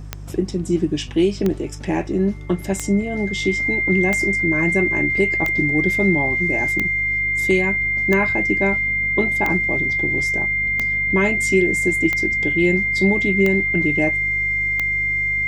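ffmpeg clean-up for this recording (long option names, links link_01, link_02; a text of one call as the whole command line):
ffmpeg -i in.wav -af "adeclick=threshold=4,bandreject=frequency=50.2:width_type=h:width=4,bandreject=frequency=100.4:width_type=h:width=4,bandreject=frequency=150.6:width_type=h:width=4,bandreject=frequency=2100:width=30" out.wav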